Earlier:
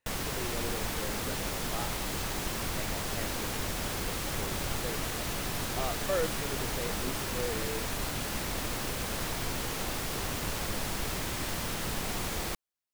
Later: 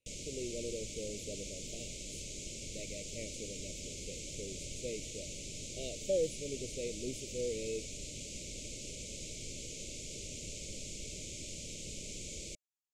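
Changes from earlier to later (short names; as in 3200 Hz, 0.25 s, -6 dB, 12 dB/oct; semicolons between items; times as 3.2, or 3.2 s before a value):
background: add ladder low-pass 7700 Hz, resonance 65%; master: add Chebyshev band-stop 610–2200 Hz, order 5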